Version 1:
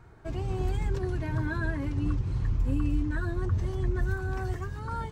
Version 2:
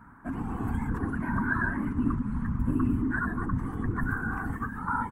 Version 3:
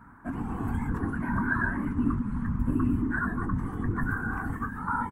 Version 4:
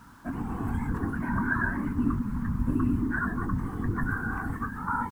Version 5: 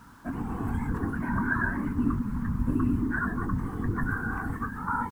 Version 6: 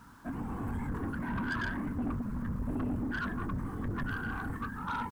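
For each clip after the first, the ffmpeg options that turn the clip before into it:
ffmpeg -i in.wav -af "afftfilt=real='hypot(re,im)*cos(2*PI*random(0))':imag='hypot(re,im)*sin(2*PI*random(1))':win_size=512:overlap=0.75,firequalizer=gain_entry='entry(160,0);entry(250,14);entry(360,-4);entry(600,-6);entry(980,13);entry(1600,11);entry(2400,-4);entry(4000,-15);entry(5800,-13);entry(9400,6)':delay=0.05:min_phase=1,volume=2.5dB" out.wav
ffmpeg -i in.wav -filter_complex "[0:a]asplit=2[link_01][link_02];[link_02]adelay=21,volume=-11dB[link_03];[link_01][link_03]amix=inputs=2:normalize=0" out.wav
ffmpeg -i in.wav -af "acrusher=bits=9:mix=0:aa=0.000001" out.wav
ffmpeg -i in.wav -af "equalizer=frequency=460:width=4.3:gain=2.5" out.wav
ffmpeg -i in.wav -af "asoftclip=type=tanh:threshold=-26dB,volume=-3dB" out.wav

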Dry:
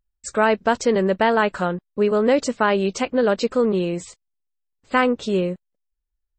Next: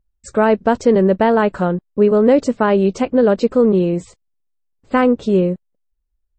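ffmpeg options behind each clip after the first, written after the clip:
ffmpeg -i in.wav -af "tiltshelf=frequency=970:gain=6.5,volume=1.5dB" out.wav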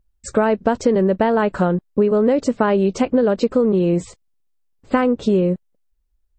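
ffmpeg -i in.wav -af "acompressor=threshold=-17dB:ratio=6,volume=4dB" out.wav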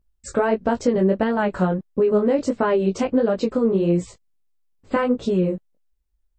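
ffmpeg -i in.wav -af "flanger=delay=16.5:depth=5.3:speed=1.5" out.wav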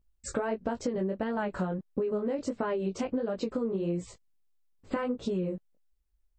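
ffmpeg -i in.wav -af "acompressor=threshold=-25dB:ratio=6,volume=-3dB" out.wav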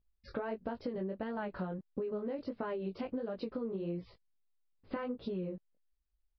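ffmpeg -i in.wav -af "aresample=11025,aresample=44100,volume=-7dB" out.wav

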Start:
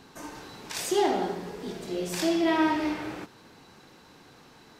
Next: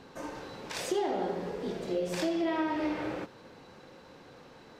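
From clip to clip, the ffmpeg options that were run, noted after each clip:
ffmpeg -i in.wav -af "equalizer=frequency=530:width_type=o:width=0.32:gain=9.5,acompressor=threshold=-27dB:ratio=6,highshelf=frequency=6100:gain=-11.5" out.wav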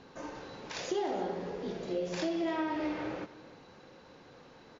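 ffmpeg -i in.wav -af "aecho=1:1:304:0.119,volume=-2.5dB" -ar 22050 -c:a mp2 -b:a 96k out.mp2

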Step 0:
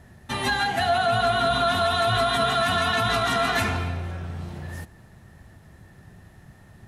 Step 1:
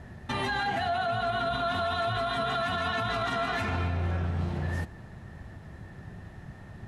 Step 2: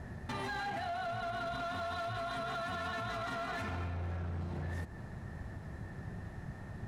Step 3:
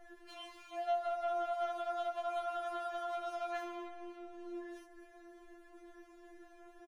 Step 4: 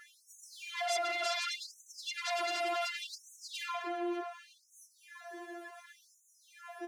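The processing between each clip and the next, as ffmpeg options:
ffmpeg -i in.wav -af "aemphasis=mode=reproduction:type=50fm,acompressor=threshold=-25dB:ratio=6,alimiter=level_in=1dB:limit=-24dB:level=0:latency=1:release=117,volume=-1dB,volume=4dB" out.wav
ffmpeg -i in.wav -af "equalizer=frequency=3100:width_type=o:width=0.78:gain=-5,acompressor=threshold=-34dB:ratio=8,asoftclip=type=hard:threshold=-34dB" out.wav
ffmpeg -i in.wav -filter_complex "[0:a]asplit=2[link_01][link_02];[link_02]adelay=20,volume=-3.5dB[link_03];[link_01][link_03]amix=inputs=2:normalize=0,afftfilt=real='re*4*eq(mod(b,16),0)':imag='im*4*eq(mod(b,16),0)':win_size=2048:overlap=0.75,volume=-5.5dB" out.wav
ffmpeg -i in.wav -filter_complex "[0:a]flanger=delay=9.8:depth=7.7:regen=36:speed=0.37:shape=sinusoidal,asplit=2[link_01][link_02];[link_02]aeval=exprs='0.0422*sin(PI/2*7.94*val(0)/0.0422)':channel_layout=same,volume=-5dB[link_03];[link_01][link_03]amix=inputs=2:normalize=0,afftfilt=real='re*gte(b*sr/1024,230*pow(6000/230,0.5+0.5*sin(2*PI*0.68*pts/sr)))':imag='im*gte(b*sr/1024,230*pow(6000/230,0.5+0.5*sin(2*PI*0.68*pts/sr)))':win_size=1024:overlap=0.75" out.wav

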